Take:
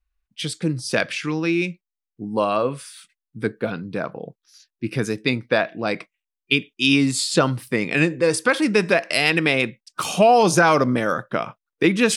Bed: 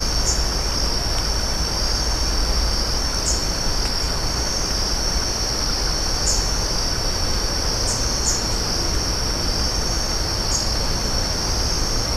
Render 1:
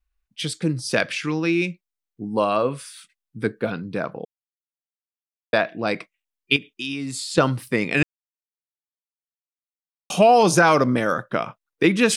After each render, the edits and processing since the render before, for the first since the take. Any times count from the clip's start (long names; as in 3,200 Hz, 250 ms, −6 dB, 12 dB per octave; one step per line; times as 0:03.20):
0:04.25–0:05.53: silence
0:06.56–0:07.38: downward compressor 3 to 1, threshold −29 dBFS
0:08.03–0:10.10: silence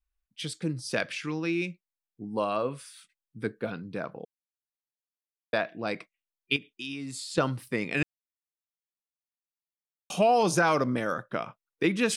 level −8 dB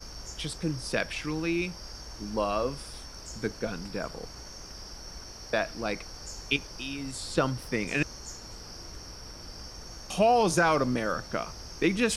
mix in bed −22 dB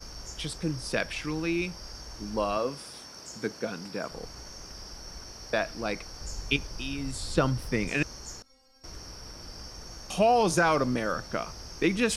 0:02.57–0:04.12: high-pass filter 150 Hz
0:06.21–0:07.89: low-shelf EQ 140 Hz +8.5 dB
0:08.42–0:08.84: stiff-string resonator 260 Hz, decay 0.51 s, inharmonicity 0.002